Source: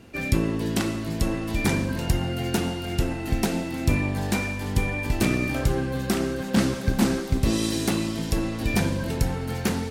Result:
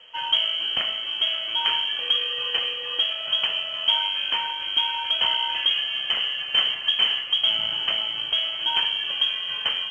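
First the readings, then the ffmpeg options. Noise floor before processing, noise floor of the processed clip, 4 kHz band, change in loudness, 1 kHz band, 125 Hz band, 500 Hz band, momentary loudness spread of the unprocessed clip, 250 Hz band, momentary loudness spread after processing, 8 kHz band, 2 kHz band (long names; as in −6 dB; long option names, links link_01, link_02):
−31 dBFS, −32 dBFS, +18.0 dB, +3.5 dB, +2.0 dB, below −30 dB, −12.5 dB, 4 LU, below −25 dB, 4 LU, below −20 dB, +1.5 dB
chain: -af "aemphasis=mode=production:type=cd,lowpass=frequency=2800:width_type=q:width=0.5098,lowpass=frequency=2800:width_type=q:width=0.6013,lowpass=frequency=2800:width_type=q:width=0.9,lowpass=frequency=2800:width_type=q:width=2.563,afreqshift=-3300" -ar 16000 -c:a pcm_mulaw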